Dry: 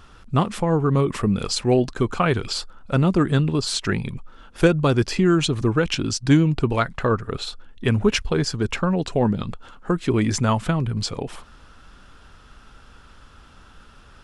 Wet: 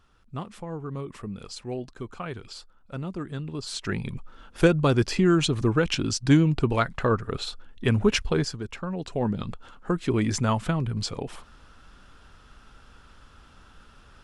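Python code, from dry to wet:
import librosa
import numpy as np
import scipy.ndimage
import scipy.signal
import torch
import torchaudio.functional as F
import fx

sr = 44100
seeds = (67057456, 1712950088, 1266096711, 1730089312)

y = fx.gain(x, sr, db=fx.line((3.36, -15.0), (4.15, -2.5), (8.38, -2.5), (8.68, -13.0), (9.45, -4.0)))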